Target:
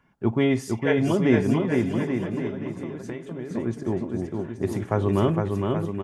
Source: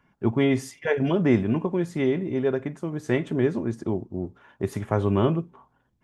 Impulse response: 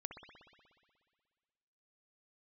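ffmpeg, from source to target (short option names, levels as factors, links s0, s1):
-filter_complex "[0:a]asettb=1/sr,asplit=3[s0][s1][s2];[s0]atrim=end=1.624[s3];[s1]atrim=start=1.62:end=3.51,asetpts=PTS-STARTPTS,afade=t=in:d=0.004:c=qsin,afade=t=out:st=1.886:d=0.004:c=qsin,acompressor=threshold=0.0224:ratio=6[s4];[s2]atrim=start=3.506[s5];[s3][s4]acrossfade=d=0.004:c1=hsin:c2=qsin[s6];[s6][s5]acrossfade=d=0.004:c1=qsin:c2=hsin,aecho=1:1:460|828|1122|1358|1546:0.631|0.398|0.251|0.158|0.1"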